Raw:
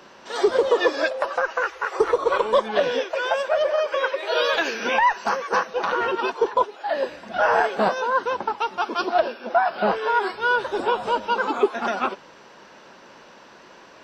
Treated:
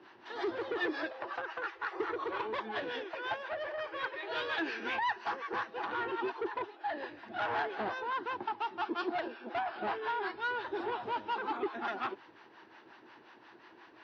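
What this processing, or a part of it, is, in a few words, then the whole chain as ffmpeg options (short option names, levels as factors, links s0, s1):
guitar amplifier with harmonic tremolo: -filter_complex "[0:a]acrossover=split=590[s0][s1];[s0]aeval=exprs='val(0)*(1-0.7/2+0.7/2*cos(2*PI*5.6*n/s))':c=same[s2];[s1]aeval=exprs='val(0)*(1-0.7/2-0.7/2*cos(2*PI*5.6*n/s))':c=same[s3];[s2][s3]amix=inputs=2:normalize=0,asoftclip=type=tanh:threshold=0.075,highpass=86,equalizer=f=110:t=q:w=4:g=7,equalizer=f=180:t=q:w=4:g=-9,equalizer=f=330:t=q:w=4:g=10,equalizer=f=550:t=q:w=4:g=-9,equalizer=f=840:t=q:w=4:g=4,equalizer=f=1800:t=q:w=4:g=5,lowpass=f=4300:w=0.5412,lowpass=f=4300:w=1.3066,volume=0.422"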